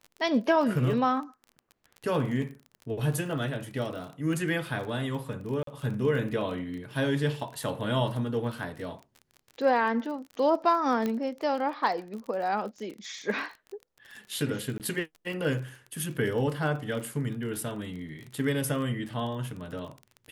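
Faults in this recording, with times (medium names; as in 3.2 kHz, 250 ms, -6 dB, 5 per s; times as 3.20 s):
crackle 32 per s -36 dBFS
5.63–5.67 s: dropout 43 ms
11.06 s: pop -17 dBFS
14.78–14.80 s: dropout 18 ms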